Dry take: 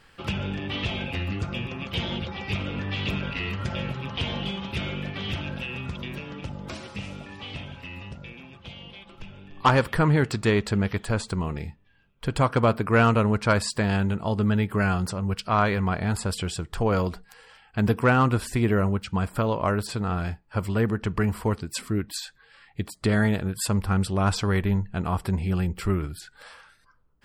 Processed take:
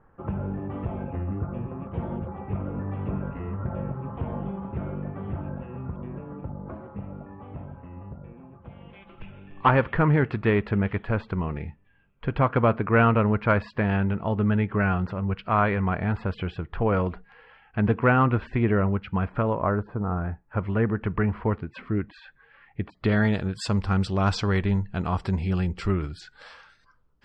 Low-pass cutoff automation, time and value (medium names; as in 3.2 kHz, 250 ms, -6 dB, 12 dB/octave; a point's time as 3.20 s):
low-pass 24 dB/octave
8.57 s 1.2 kHz
9.10 s 2.6 kHz
19.31 s 2.6 kHz
20.01 s 1.2 kHz
20.67 s 2.4 kHz
22.85 s 2.4 kHz
23.37 s 6.1 kHz